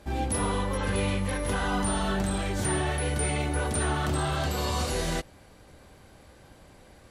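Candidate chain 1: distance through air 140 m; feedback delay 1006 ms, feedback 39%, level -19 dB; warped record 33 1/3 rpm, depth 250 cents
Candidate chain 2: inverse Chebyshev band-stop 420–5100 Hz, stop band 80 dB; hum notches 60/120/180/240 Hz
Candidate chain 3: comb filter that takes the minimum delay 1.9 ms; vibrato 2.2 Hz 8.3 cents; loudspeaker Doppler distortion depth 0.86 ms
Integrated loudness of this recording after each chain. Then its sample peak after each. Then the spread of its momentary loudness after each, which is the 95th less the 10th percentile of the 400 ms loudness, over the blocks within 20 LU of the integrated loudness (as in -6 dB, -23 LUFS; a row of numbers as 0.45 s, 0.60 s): -29.5 LUFS, -38.0 LUFS, -30.5 LUFS; -16.5 dBFS, -26.0 dBFS, -18.0 dBFS; 18 LU, 2 LU, 2 LU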